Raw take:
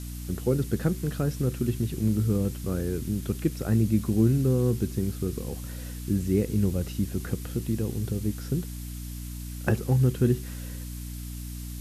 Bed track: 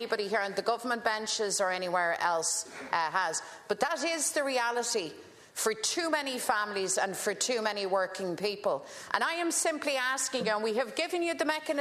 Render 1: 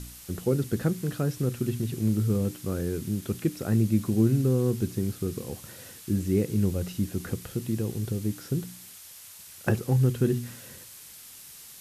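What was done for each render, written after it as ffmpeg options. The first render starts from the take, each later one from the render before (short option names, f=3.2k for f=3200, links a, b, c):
-af "bandreject=f=60:t=h:w=4,bandreject=f=120:t=h:w=4,bandreject=f=180:t=h:w=4,bandreject=f=240:t=h:w=4,bandreject=f=300:t=h:w=4"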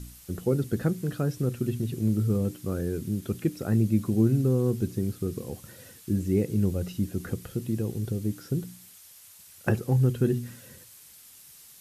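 -af "afftdn=nr=6:nf=-47"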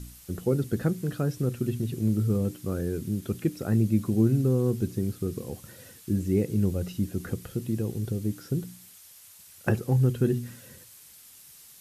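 -af anull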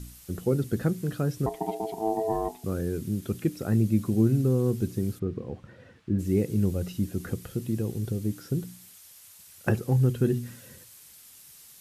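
-filter_complex "[0:a]asettb=1/sr,asplit=3[a][b][c];[a]atrim=end=1.464[d];[b]atrim=start=1.46:end=2.64,asetpts=PTS-STARTPTS,afade=t=in:d=0.004:c=qsin,afade=t=out:st=1.176:d=0.004:c=qsin,aeval=exprs='val(0)*sin(2*PI*550*n/s)':c=same[e];[c]atrim=start=2.636[f];[d][e]acrossfade=d=0.004:c1=hsin:c2=qsin[g];[g][f]acrossfade=d=0.004:c1=qsin:c2=hsin,asplit=3[h][i][j];[h]afade=t=out:st=5.18:d=0.02[k];[i]lowpass=2.1k,afade=t=in:st=5.18:d=0.02,afade=t=out:st=6.18:d=0.02[l];[j]afade=t=in:st=6.18:d=0.02[m];[k][l][m]amix=inputs=3:normalize=0"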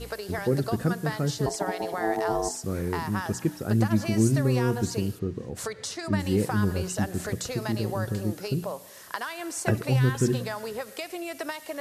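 -filter_complex "[1:a]volume=-4.5dB[a];[0:a][a]amix=inputs=2:normalize=0"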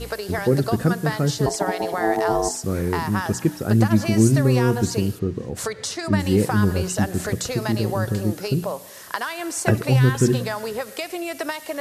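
-af "volume=6dB"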